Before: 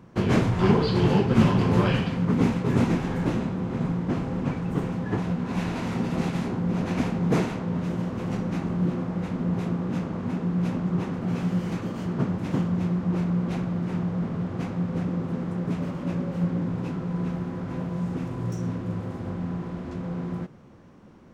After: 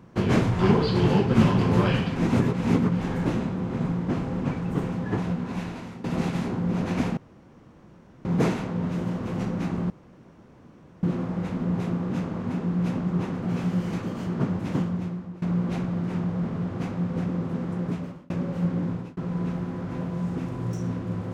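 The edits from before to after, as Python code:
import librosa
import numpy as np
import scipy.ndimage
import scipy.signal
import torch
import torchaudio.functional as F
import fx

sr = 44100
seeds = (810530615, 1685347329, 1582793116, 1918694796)

y = fx.edit(x, sr, fx.reverse_span(start_s=2.16, length_s=0.85),
    fx.fade_out_to(start_s=5.28, length_s=0.76, floor_db=-16.0),
    fx.insert_room_tone(at_s=7.17, length_s=1.08),
    fx.insert_room_tone(at_s=8.82, length_s=1.13),
    fx.fade_out_to(start_s=12.53, length_s=0.68, floor_db=-21.5),
    fx.fade_out_span(start_s=15.65, length_s=0.44),
    fx.fade_out_span(start_s=16.7, length_s=0.26), tone=tone)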